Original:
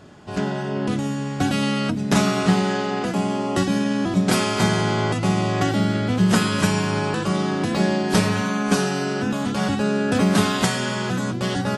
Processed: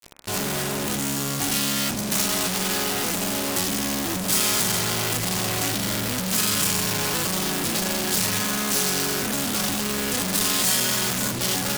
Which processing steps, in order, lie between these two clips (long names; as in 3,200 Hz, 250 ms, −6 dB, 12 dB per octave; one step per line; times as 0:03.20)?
fuzz pedal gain 41 dB, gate −39 dBFS
first-order pre-emphasis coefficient 0.8
hum removal 64.23 Hz, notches 40